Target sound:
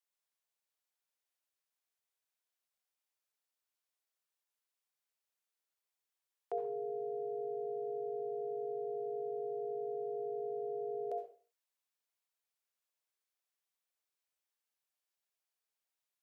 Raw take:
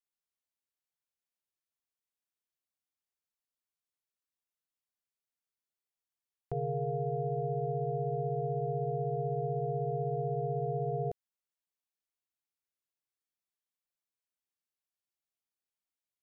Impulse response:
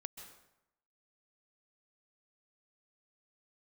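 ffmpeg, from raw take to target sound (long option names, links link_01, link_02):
-filter_complex "[0:a]highpass=frequency=420:width=0.5412,highpass=frequency=420:width=1.3066[link_01];[1:a]atrim=start_sample=2205,asetrate=88200,aresample=44100[link_02];[link_01][link_02]afir=irnorm=-1:irlink=0,volume=12.5dB"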